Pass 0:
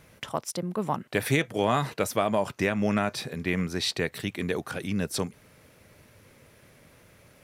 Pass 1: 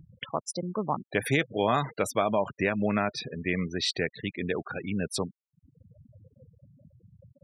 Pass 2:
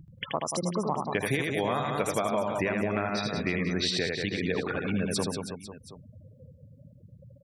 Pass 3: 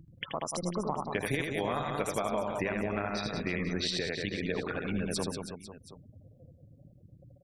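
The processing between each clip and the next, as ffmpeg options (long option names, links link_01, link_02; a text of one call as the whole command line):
ffmpeg -i in.wav -af "acompressor=mode=upward:threshold=-36dB:ratio=2.5,afftfilt=real='re*gte(hypot(re,im),0.0251)':imag='im*gte(hypot(re,im),0.0251)':win_size=1024:overlap=0.75,lowshelf=frequency=220:gain=-3.5" out.wav
ffmpeg -i in.wav -filter_complex "[0:a]asplit=2[link_01][link_02];[link_02]aecho=0:1:80|184|319.2|495|723.4:0.631|0.398|0.251|0.158|0.1[link_03];[link_01][link_03]amix=inputs=2:normalize=0,acompressor=threshold=-26dB:ratio=6,volume=2dB" out.wav
ffmpeg -i in.wav -af "tremolo=f=170:d=0.519,volume=-1.5dB" out.wav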